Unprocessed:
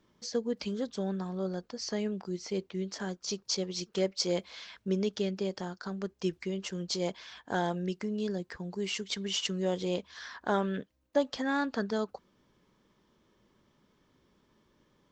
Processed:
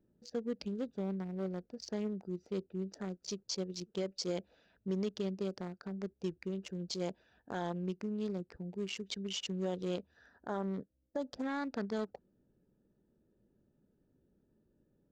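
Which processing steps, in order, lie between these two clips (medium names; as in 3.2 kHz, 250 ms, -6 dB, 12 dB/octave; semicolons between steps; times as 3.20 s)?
local Wiener filter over 41 samples; peak limiter -24 dBFS, peak gain reduction 9 dB; 10.29–11.44 s: peaking EQ 2.8 kHz -8 dB 0.99 oct; trim -3 dB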